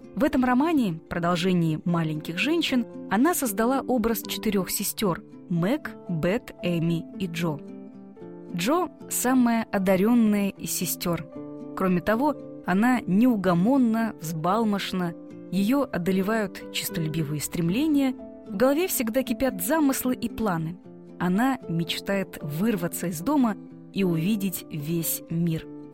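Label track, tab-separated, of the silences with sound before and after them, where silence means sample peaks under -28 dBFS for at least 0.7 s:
7.550000	8.540000	silence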